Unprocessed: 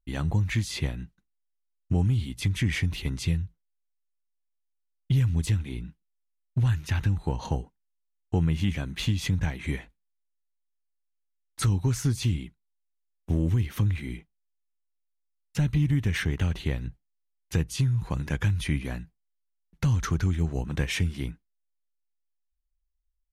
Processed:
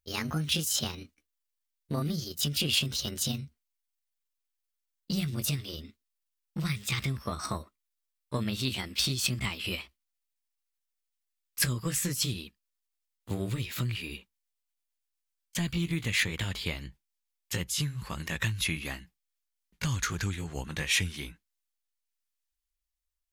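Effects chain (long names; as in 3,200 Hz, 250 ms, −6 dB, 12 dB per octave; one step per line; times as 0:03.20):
pitch glide at a constant tempo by +7.5 semitones ending unshifted
tilt shelving filter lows −7.5 dB, about 940 Hz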